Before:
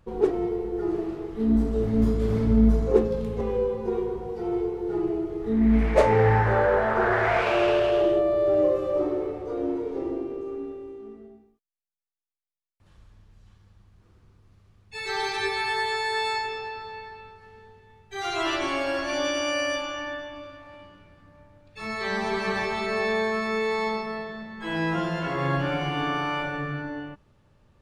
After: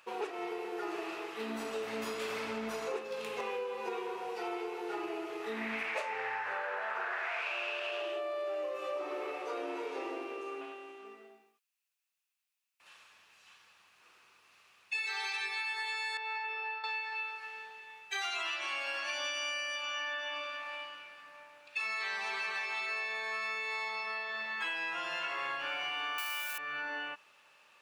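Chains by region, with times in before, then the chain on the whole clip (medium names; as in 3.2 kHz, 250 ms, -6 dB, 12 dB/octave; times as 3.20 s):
10.61–11.05 s: peaking EQ 470 Hz -11.5 dB 0.23 oct + loudspeaker Doppler distortion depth 0.15 ms
16.17–16.84 s: expander -33 dBFS + tape spacing loss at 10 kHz 36 dB
26.18–26.58 s: zero-crossing glitches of -33.5 dBFS + tilt EQ +3.5 dB/octave
whole clip: high-pass 1.1 kHz 12 dB/octave; peaking EQ 2.6 kHz +10.5 dB 0.23 oct; compression 16:1, threshold -42 dBFS; trim +8.5 dB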